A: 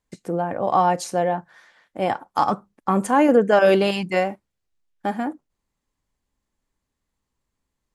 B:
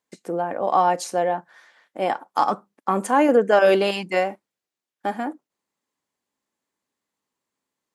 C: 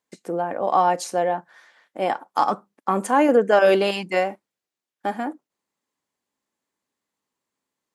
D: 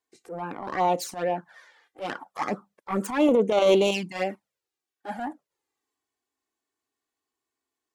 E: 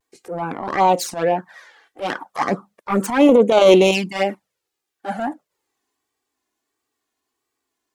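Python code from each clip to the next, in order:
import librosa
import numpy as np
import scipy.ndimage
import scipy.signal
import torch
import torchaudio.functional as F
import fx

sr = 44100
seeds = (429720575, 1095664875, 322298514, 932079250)

y1 = scipy.signal.sosfilt(scipy.signal.butter(2, 260.0, 'highpass', fs=sr, output='sos'), x)
y2 = y1
y3 = fx.self_delay(y2, sr, depth_ms=0.16)
y3 = fx.transient(y3, sr, attack_db=-12, sustain_db=2)
y3 = fx.env_flanger(y3, sr, rest_ms=2.7, full_db=-17.5)
y4 = fx.vibrato(y3, sr, rate_hz=1.5, depth_cents=82.0)
y4 = y4 * 10.0 ** (8.0 / 20.0)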